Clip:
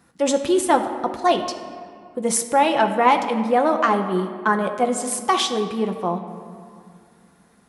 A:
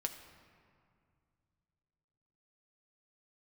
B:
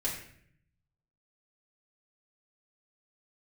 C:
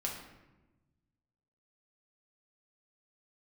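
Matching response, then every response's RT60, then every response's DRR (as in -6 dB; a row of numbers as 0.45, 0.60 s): A; 2.2, 0.65, 1.1 s; 4.0, -6.0, -2.0 dB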